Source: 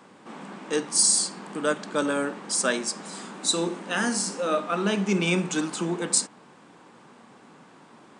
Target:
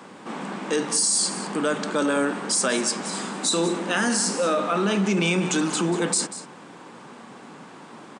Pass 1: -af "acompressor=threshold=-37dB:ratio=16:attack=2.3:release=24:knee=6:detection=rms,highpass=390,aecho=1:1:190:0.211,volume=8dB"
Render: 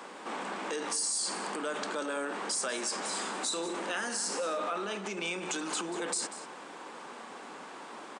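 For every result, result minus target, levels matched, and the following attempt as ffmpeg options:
125 Hz band -11.0 dB; compressor: peak gain reduction +10.5 dB
-af "acompressor=threshold=-37dB:ratio=16:attack=2.3:release=24:knee=6:detection=rms,highpass=100,aecho=1:1:190:0.211,volume=8dB"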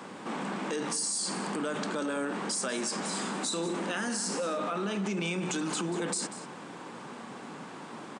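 compressor: peak gain reduction +10.5 dB
-af "acompressor=threshold=-26dB:ratio=16:attack=2.3:release=24:knee=6:detection=rms,highpass=100,aecho=1:1:190:0.211,volume=8dB"

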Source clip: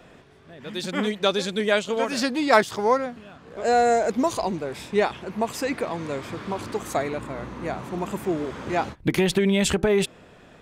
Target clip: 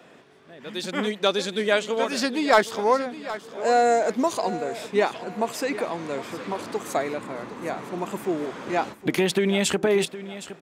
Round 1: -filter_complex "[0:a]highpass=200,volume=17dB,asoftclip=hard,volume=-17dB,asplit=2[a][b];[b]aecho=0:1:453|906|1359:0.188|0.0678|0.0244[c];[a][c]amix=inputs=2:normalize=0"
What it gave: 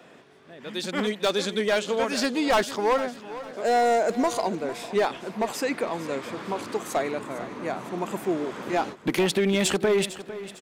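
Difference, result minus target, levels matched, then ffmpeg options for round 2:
overloaded stage: distortion +16 dB; echo 0.312 s early
-filter_complex "[0:a]highpass=200,volume=7dB,asoftclip=hard,volume=-7dB,asplit=2[a][b];[b]aecho=0:1:765|1530|2295:0.188|0.0678|0.0244[c];[a][c]amix=inputs=2:normalize=0"

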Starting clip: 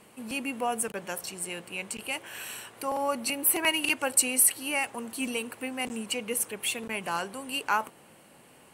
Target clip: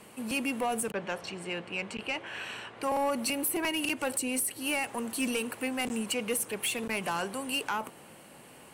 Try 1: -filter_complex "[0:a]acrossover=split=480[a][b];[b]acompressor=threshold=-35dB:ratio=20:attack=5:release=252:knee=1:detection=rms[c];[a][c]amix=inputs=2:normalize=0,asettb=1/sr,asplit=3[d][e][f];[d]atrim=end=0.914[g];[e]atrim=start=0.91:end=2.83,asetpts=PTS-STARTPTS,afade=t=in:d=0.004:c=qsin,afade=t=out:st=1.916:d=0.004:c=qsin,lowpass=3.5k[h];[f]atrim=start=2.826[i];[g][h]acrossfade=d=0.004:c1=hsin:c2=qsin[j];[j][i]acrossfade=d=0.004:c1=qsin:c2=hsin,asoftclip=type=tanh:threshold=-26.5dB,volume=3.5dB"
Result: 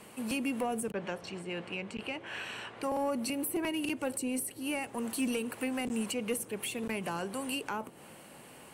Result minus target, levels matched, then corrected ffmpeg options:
compressor: peak gain reduction +8 dB
-filter_complex "[0:a]acrossover=split=480[a][b];[b]acompressor=threshold=-26.5dB:ratio=20:attack=5:release=252:knee=1:detection=rms[c];[a][c]amix=inputs=2:normalize=0,asettb=1/sr,asplit=3[d][e][f];[d]atrim=end=0.914[g];[e]atrim=start=0.91:end=2.83,asetpts=PTS-STARTPTS,afade=t=in:d=0.004:c=qsin,afade=t=out:st=1.916:d=0.004:c=qsin,lowpass=3.5k[h];[f]atrim=start=2.826[i];[g][h]acrossfade=d=0.004:c1=hsin:c2=qsin[j];[j][i]acrossfade=d=0.004:c1=qsin:c2=hsin,asoftclip=type=tanh:threshold=-26.5dB,volume=3.5dB"

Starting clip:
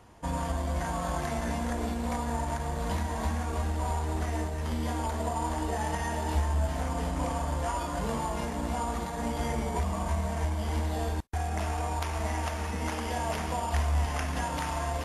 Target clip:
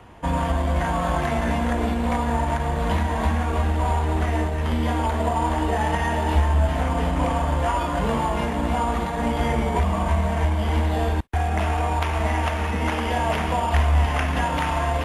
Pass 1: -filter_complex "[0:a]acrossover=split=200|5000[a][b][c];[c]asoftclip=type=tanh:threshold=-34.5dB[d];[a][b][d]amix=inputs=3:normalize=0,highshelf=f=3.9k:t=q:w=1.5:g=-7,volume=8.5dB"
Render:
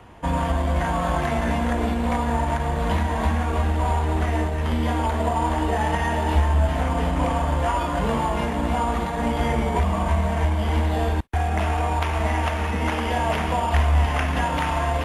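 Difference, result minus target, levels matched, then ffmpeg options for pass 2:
soft clip: distortion +10 dB
-filter_complex "[0:a]acrossover=split=200|5000[a][b][c];[c]asoftclip=type=tanh:threshold=-27.5dB[d];[a][b][d]amix=inputs=3:normalize=0,highshelf=f=3.9k:t=q:w=1.5:g=-7,volume=8.5dB"

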